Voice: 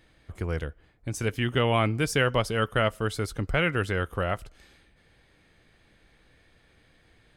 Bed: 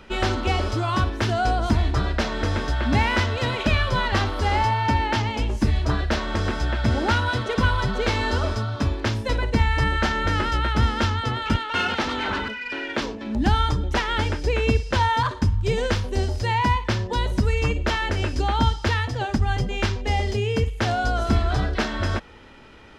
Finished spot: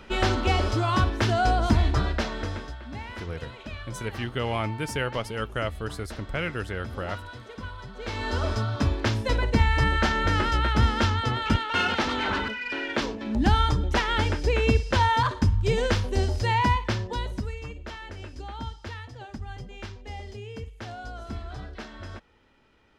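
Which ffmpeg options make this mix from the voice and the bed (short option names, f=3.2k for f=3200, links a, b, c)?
-filter_complex "[0:a]adelay=2800,volume=-5dB[a];[1:a]volume=16dB,afade=t=out:st=1.86:d=0.94:silence=0.141254,afade=t=in:st=7.95:d=0.66:silence=0.149624,afade=t=out:st=16.59:d=1.01:silence=0.188365[b];[a][b]amix=inputs=2:normalize=0"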